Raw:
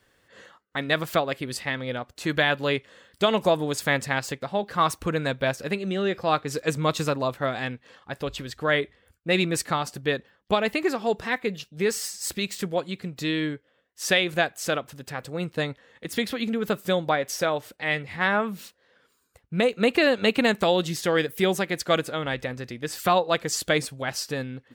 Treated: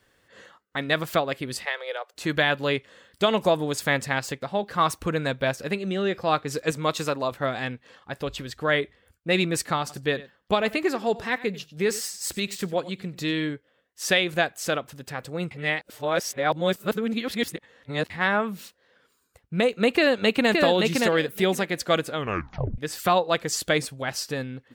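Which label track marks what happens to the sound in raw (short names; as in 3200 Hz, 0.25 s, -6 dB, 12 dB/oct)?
1.650000	2.140000	steep high-pass 410 Hz 72 dB/oct
6.710000	7.320000	low shelf 150 Hz -11 dB
9.800000	13.500000	echo 94 ms -18 dB
15.510000	18.100000	reverse
19.910000	20.510000	echo throw 0.57 s, feedback 15%, level -3 dB
22.170000	22.170000	tape stop 0.61 s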